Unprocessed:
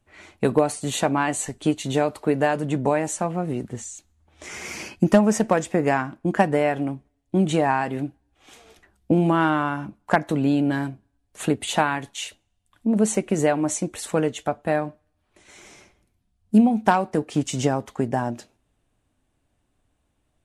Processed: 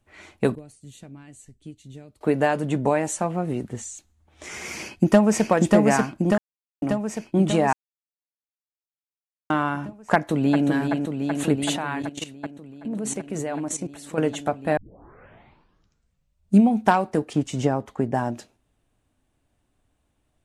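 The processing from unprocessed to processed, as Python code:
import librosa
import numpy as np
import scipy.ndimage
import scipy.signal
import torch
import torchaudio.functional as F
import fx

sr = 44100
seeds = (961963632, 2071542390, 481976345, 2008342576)

y = fx.tone_stack(x, sr, knobs='10-0-1', at=(0.55, 2.21))
y = fx.echo_throw(y, sr, start_s=4.73, length_s=0.76, ms=590, feedback_pct=65, wet_db=-2.0)
y = fx.echo_throw(y, sr, start_s=10.15, length_s=0.52, ms=380, feedback_pct=85, wet_db=-5.0)
y = fx.level_steps(y, sr, step_db=14, at=(11.76, 14.18))
y = fx.high_shelf(y, sr, hz=2500.0, db=-8.5, at=(17.33, 18.15))
y = fx.edit(y, sr, fx.silence(start_s=6.38, length_s=0.44),
    fx.silence(start_s=7.73, length_s=1.77),
    fx.tape_start(start_s=14.77, length_s=1.92), tone=tone)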